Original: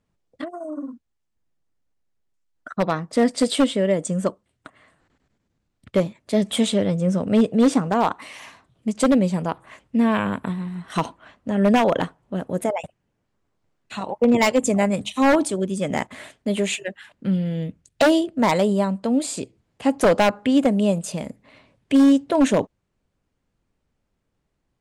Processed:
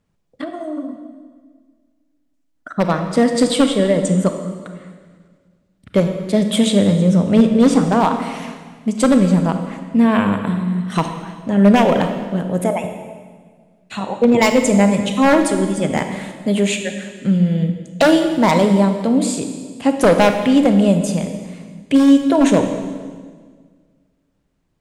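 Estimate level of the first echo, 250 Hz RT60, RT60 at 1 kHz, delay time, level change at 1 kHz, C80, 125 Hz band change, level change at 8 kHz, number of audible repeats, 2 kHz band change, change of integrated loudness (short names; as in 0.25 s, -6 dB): none, 2.0 s, 1.5 s, none, +4.5 dB, 8.5 dB, +8.0 dB, +4.5 dB, none, +4.5 dB, +5.0 dB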